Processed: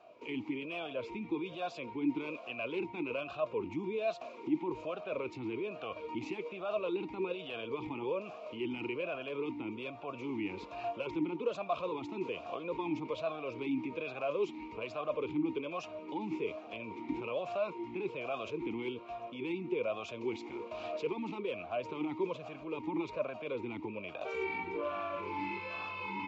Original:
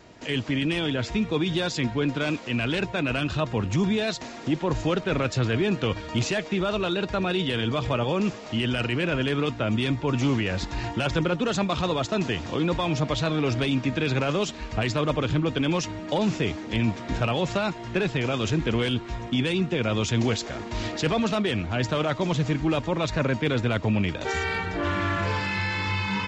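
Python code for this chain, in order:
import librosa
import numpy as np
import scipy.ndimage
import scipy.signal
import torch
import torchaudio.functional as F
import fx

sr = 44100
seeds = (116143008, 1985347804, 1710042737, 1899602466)

p1 = fx.over_compress(x, sr, threshold_db=-28.0, ratio=-1.0)
p2 = x + (p1 * 10.0 ** (2.0 / 20.0))
p3 = fx.vowel_sweep(p2, sr, vowels='a-u', hz=1.2)
y = p3 * 10.0 ** (-5.5 / 20.0)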